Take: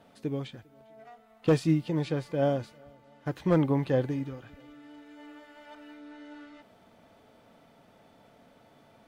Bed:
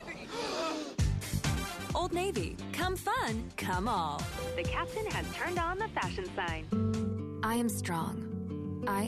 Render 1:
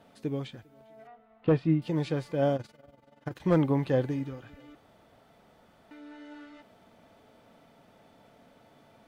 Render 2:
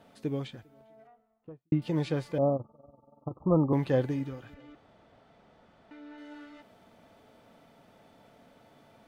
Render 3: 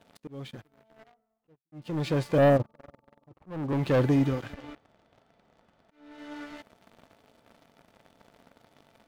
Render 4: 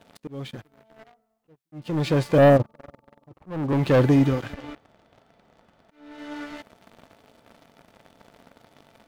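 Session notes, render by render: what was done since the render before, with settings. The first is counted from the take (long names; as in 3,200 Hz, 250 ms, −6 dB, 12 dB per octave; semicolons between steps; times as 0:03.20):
0:01.07–0:01.82: high-frequency loss of the air 380 metres; 0:02.56–0:03.41: amplitude modulation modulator 21 Hz, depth 65%; 0:04.75–0:05.91: fill with room tone
0:00.47–0:01.72: fade out and dull; 0:02.38–0:03.73: Chebyshev low-pass filter 1,300 Hz, order 10; 0:04.54–0:06.18: high-frequency loss of the air 83 metres
leveller curve on the samples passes 3; volume swells 744 ms
level +5.5 dB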